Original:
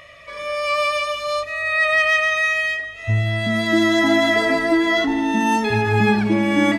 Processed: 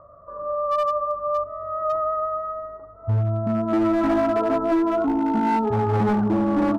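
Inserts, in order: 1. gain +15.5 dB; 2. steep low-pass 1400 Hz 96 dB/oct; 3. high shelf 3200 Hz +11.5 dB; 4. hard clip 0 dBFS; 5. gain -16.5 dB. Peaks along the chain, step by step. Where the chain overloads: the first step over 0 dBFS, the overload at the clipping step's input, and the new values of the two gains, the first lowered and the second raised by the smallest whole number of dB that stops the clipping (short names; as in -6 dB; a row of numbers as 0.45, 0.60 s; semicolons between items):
+10.0, +8.5, +9.0, 0.0, -16.5 dBFS; step 1, 9.0 dB; step 1 +6.5 dB, step 5 -7.5 dB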